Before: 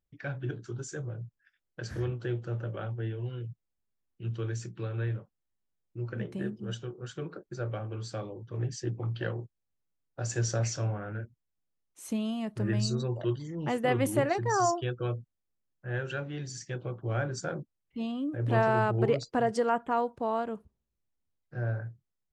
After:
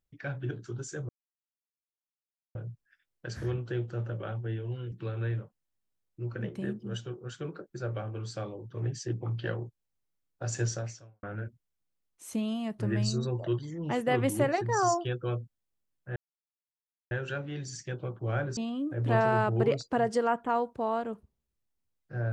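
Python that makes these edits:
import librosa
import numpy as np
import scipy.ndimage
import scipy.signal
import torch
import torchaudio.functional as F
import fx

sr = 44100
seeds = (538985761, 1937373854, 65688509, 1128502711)

y = fx.edit(x, sr, fx.insert_silence(at_s=1.09, length_s=1.46),
    fx.cut(start_s=3.46, length_s=1.23),
    fx.fade_out_span(start_s=10.4, length_s=0.6, curve='qua'),
    fx.insert_silence(at_s=15.93, length_s=0.95),
    fx.cut(start_s=17.39, length_s=0.6), tone=tone)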